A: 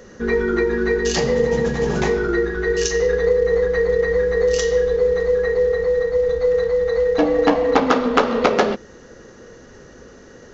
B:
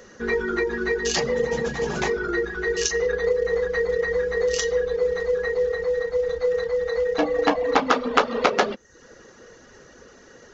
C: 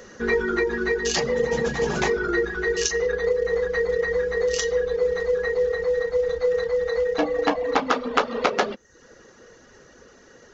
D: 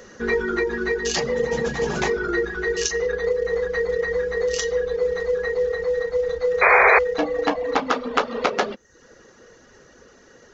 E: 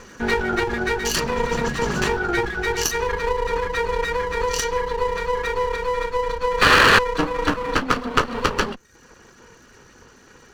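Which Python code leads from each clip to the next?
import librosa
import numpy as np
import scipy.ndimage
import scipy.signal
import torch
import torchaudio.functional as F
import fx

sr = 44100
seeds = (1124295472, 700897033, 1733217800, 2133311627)

y1 = fx.dereverb_blind(x, sr, rt60_s=0.52)
y1 = fx.low_shelf(y1, sr, hz=460.0, db=-8.5)
y2 = fx.rider(y1, sr, range_db=10, speed_s=0.5)
y3 = fx.spec_paint(y2, sr, seeds[0], shape='noise', start_s=6.61, length_s=0.38, low_hz=380.0, high_hz=2500.0, level_db=-14.0)
y4 = fx.lower_of_two(y3, sr, delay_ms=0.68)
y4 = y4 * librosa.db_to_amplitude(3.0)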